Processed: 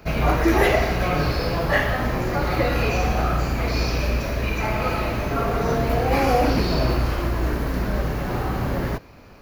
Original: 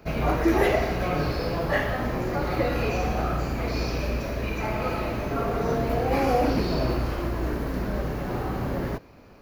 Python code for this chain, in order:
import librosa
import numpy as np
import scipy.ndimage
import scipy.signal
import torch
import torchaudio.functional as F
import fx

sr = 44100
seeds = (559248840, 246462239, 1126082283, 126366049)

y = fx.peak_eq(x, sr, hz=350.0, db=-4.5, octaves=2.6)
y = y * librosa.db_to_amplitude(6.5)